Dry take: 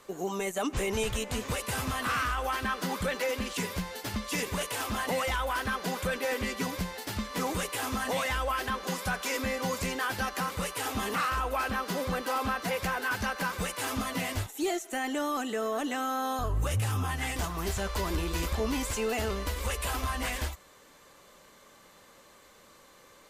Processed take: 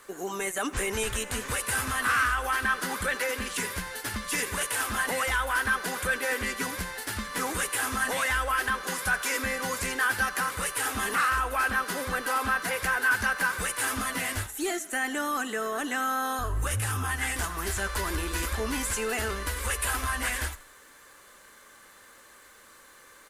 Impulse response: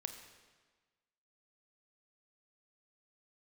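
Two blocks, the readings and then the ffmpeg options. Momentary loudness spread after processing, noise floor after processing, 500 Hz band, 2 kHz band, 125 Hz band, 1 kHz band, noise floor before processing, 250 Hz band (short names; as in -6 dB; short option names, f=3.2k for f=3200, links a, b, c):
6 LU, -54 dBFS, -1.5 dB, +7.5 dB, -2.0 dB, +2.5 dB, -57 dBFS, -2.5 dB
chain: -filter_complex "[0:a]equalizer=f=160:t=o:w=0.67:g=-8,equalizer=f=630:t=o:w=0.67:g=-3,equalizer=f=1.6k:t=o:w=0.67:g=9,equalizer=f=10k:t=o:w=0.67:g=10,acrusher=bits=10:mix=0:aa=0.000001,asplit=4[a][b][c][d];[b]adelay=84,afreqshift=-40,volume=-19.5dB[e];[c]adelay=168,afreqshift=-80,volume=-27.9dB[f];[d]adelay=252,afreqshift=-120,volume=-36.3dB[g];[a][e][f][g]amix=inputs=4:normalize=0"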